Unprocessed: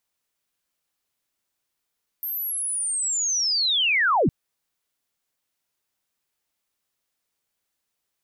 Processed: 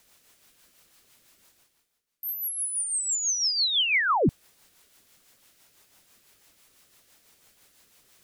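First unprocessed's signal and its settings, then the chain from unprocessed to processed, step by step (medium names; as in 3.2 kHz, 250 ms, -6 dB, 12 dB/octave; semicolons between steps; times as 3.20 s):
sweep linear 13 kHz -> 100 Hz -26.5 dBFS -> -16 dBFS 2.06 s
rotary cabinet horn 6 Hz; reverse; upward compressor, threshold -41 dBFS; reverse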